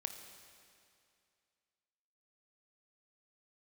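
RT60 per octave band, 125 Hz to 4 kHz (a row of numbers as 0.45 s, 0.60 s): 2.4 s, 2.4 s, 2.4 s, 2.4 s, 2.4 s, 2.3 s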